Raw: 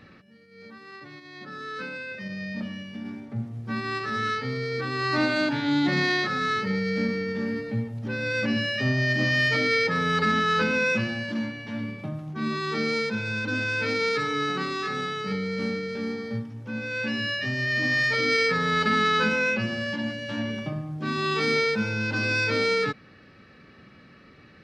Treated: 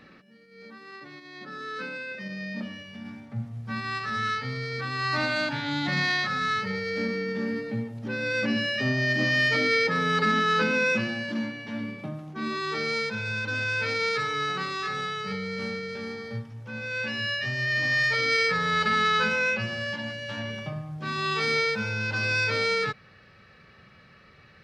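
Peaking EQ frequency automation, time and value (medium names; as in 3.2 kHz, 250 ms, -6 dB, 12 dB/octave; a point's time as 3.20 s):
peaking EQ -13 dB 0.8 oct
2.59 s 93 Hz
3.01 s 350 Hz
6.55 s 350 Hz
7.37 s 80 Hz
12.04 s 80 Hz
12.94 s 280 Hz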